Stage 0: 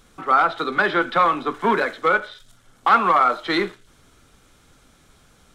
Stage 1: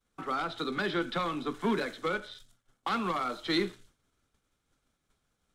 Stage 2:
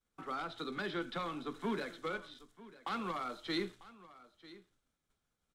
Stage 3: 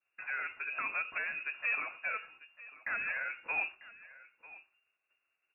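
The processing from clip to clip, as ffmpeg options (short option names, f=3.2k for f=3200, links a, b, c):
-filter_complex "[0:a]agate=range=-33dB:threshold=-41dB:ratio=3:detection=peak,acrossover=split=350|3000[a][b][c];[b]acompressor=threshold=-42dB:ratio=2[d];[a][d][c]amix=inputs=3:normalize=0,volume=-3dB"
-af "aecho=1:1:945:0.119,volume=-7.5dB"
-af "lowpass=f=2.4k:t=q:w=0.5098,lowpass=f=2.4k:t=q:w=0.6013,lowpass=f=2.4k:t=q:w=0.9,lowpass=f=2.4k:t=q:w=2.563,afreqshift=-2800,volume=2.5dB"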